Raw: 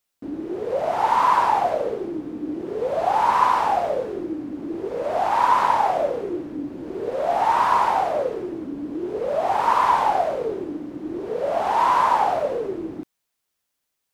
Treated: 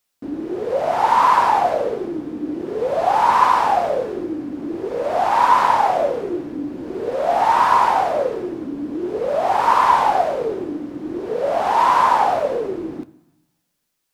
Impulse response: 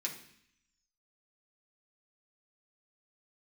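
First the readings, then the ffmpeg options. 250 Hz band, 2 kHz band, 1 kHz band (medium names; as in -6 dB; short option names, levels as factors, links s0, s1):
+3.0 dB, +4.5 dB, +3.5 dB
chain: -filter_complex "[0:a]asplit=2[s0][s1];[1:a]atrim=start_sample=2205,asetrate=29988,aresample=44100[s2];[s1][s2]afir=irnorm=-1:irlink=0,volume=0.2[s3];[s0][s3]amix=inputs=2:normalize=0,volume=1.33"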